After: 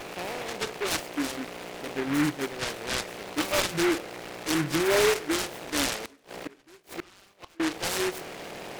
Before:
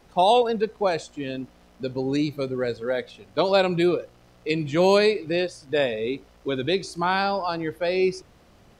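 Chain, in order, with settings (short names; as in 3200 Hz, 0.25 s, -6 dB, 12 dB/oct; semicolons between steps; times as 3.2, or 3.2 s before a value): per-bin compression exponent 0.2; spectral noise reduction 24 dB; in parallel at -1 dB: compressor, threshold -30 dBFS, peak gain reduction 13 dB; 6.04–7.6 on the sum: flipped gate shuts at -20 dBFS, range -29 dB; on a send at -20 dB: reverb RT60 0.70 s, pre-delay 3 ms; on the sum: noise-modulated delay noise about 1500 Hz, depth 0.18 ms; gain -4 dB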